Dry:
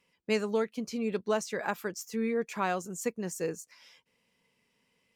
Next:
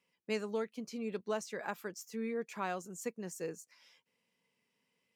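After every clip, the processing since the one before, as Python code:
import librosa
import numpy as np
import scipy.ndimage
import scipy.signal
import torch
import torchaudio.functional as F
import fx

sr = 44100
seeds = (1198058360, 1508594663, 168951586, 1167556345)

y = scipy.signal.sosfilt(scipy.signal.butter(2, 120.0, 'highpass', fs=sr, output='sos'), x)
y = y * 10.0 ** (-7.0 / 20.0)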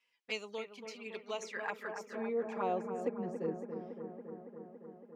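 y = fx.env_flanger(x, sr, rest_ms=8.4, full_db=-33.5)
y = fx.echo_bbd(y, sr, ms=280, stages=4096, feedback_pct=77, wet_db=-8)
y = fx.filter_sweep_bandpass(y, sr, from_hz=2600.0, to_hz=310.0, start_s=1.24, end_s=3.32, q=0.71)
y = y * 10.0 ** (7.0 / 20.0)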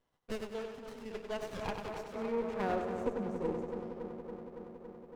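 y = fx.echo_feedback(x, sr, ms=96, feedback_pct=42, wet_db=-6)
y = fx.running_max(y, sr, window=17)
y = y * 10.0 ** (1.0 / 20.0)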